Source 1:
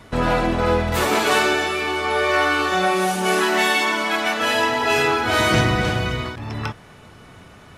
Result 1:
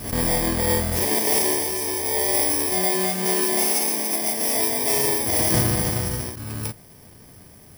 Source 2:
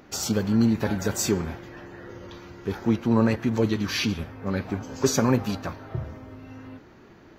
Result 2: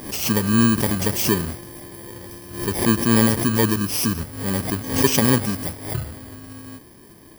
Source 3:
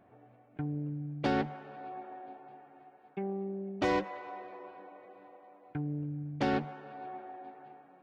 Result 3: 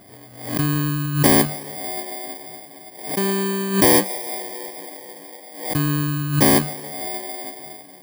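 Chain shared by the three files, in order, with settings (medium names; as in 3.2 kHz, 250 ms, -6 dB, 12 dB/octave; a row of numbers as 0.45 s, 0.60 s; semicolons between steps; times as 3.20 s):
bit-reversed sample order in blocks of 32 samples; swell ahead of each attack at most 92 dB/s; normalise loudness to -20 LUFS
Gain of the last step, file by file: -2.5 dB, +4.0 dB, +14.5 dB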